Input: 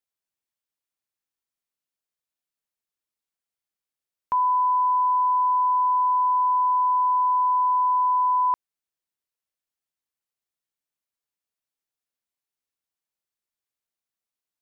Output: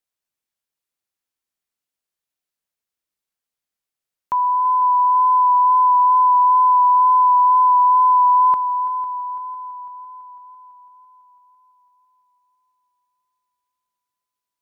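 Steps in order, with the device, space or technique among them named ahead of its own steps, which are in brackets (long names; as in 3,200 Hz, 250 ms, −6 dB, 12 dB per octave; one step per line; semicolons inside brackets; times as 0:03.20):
multi-head tape echo (echo machine with several playback heads 167 ms, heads second and third, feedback 55%, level −15.5 dB; tape wow and flutter 15 cents)
level +3 dB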